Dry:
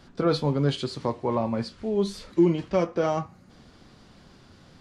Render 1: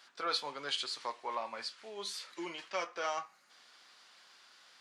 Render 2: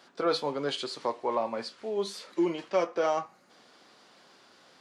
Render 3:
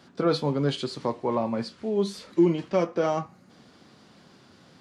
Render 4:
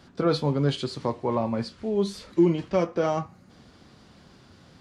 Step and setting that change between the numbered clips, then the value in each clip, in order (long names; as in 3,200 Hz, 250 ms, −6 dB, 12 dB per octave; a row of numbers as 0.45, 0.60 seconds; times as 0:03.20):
high-pass filter, corner frequency: 1,300, 480, 150, 49 Hertz